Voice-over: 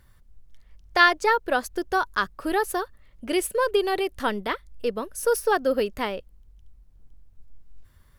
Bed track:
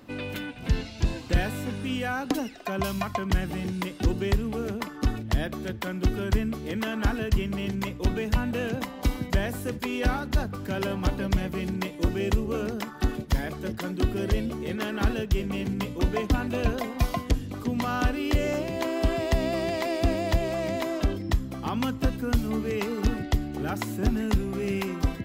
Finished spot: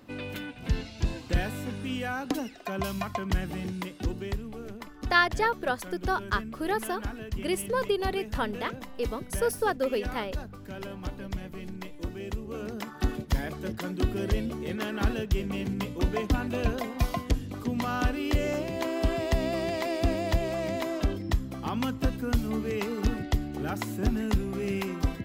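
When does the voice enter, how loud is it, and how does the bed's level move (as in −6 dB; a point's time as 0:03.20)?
4.15 s, −5.0 dB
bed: 0:03.64 −3 dB
0:04.54 −10 dB
0:12.40 −10 dB
0:12.93 −2 dB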